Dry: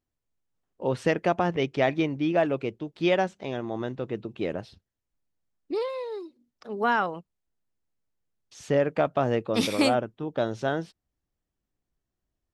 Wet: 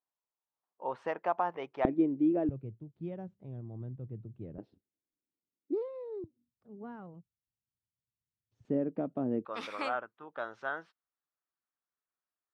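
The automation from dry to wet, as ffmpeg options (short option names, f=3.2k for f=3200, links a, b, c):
-af "asetnsamples=n=441:p=0,asendcmd='1.85 bandpass f 310;2.49 bandpass f 110;4.58 bandpass f 310;6.24 bandpass f 110;8.65 bandpass f 260;9.45 bandpass f 1300',bandpass=f=950:t=q:w=2.5:csg=0"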